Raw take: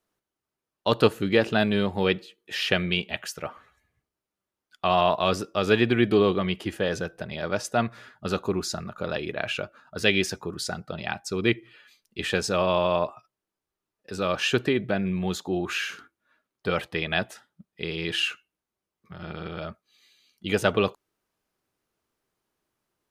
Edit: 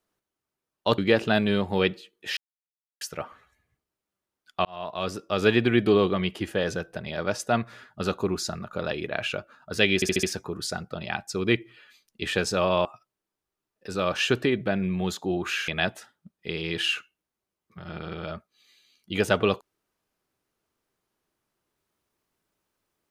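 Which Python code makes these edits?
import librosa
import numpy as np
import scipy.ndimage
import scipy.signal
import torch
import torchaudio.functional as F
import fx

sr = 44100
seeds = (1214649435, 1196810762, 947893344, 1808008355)

y = fx.edit(x, sr, fx.cut(start_s=0.98, length_s=0.25),
    fx.silence(start_s=2.62, length_s=0.64),
    fx.fade_in_span(start_s=4.9, length_s=0.79),
    fx.stutter(start_s=10.2, slice_s=0.07, count=5),
    fx.cut(start_s=12.82, length_s=0.26),
    fx.cut(start_s=15.91, length_s=1.11), tone=tone)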